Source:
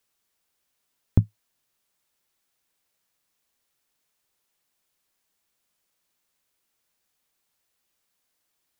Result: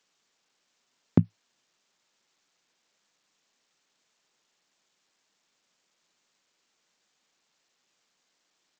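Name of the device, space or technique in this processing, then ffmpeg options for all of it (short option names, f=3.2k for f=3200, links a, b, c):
Bluetooth headset: -af "highpass=f=150:w=0.5412,highpass=f=150:w=1.3066,aresample=16000,aresample=44100,volume=5.5dB" -ar 44100 -c:a sbc -b:a 64k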